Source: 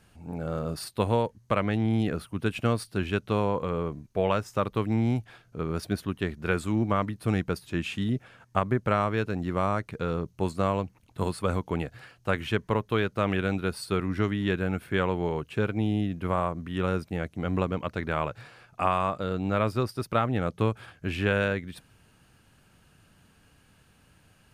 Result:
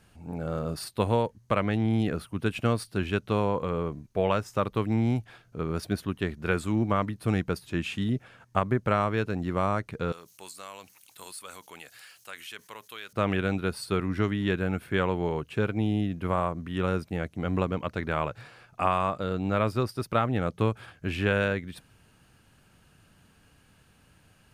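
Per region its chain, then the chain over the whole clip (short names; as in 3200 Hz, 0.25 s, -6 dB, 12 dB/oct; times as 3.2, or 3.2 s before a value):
10.12–13.13 differentiator + fast leveller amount 50%
whole clip: dry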